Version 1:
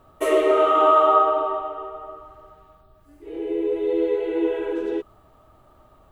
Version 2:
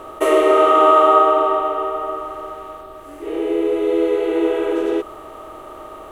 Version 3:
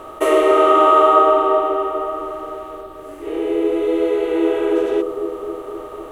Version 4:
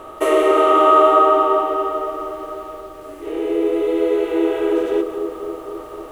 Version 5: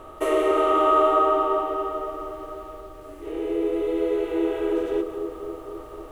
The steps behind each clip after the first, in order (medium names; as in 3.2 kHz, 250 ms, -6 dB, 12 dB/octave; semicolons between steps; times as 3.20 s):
spectral levelling over time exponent 0.6; trim +2.5 dB
bucket-brigade echo 254 ms, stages 1024, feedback 69%, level -7 dB
bit-crushed delay 179 ms, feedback 55%, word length 7-bit, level -12 dB; trim -1 dB
bass shelf 120 Hz +11.5 dB; trim -7 dB